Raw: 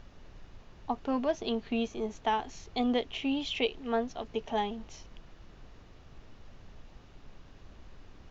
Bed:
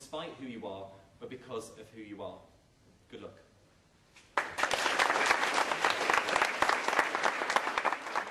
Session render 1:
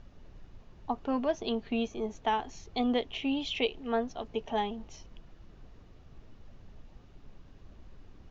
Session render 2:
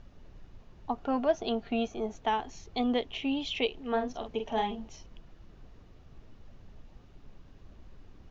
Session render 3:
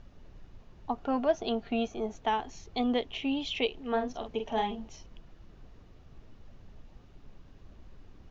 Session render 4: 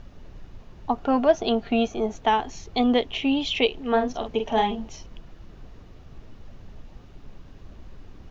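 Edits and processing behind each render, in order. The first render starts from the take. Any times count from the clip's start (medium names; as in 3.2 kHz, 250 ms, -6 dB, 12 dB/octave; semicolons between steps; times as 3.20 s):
noise reduction 6 dB, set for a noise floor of -55 dBFS
0.98–2.16 s: small resonant body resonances 720/1400 Hz, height 9 dB, ringing for 25 ms; 3.88–4.89 s: doubling 45 ms -6 dB
no audible change
trim +8 dB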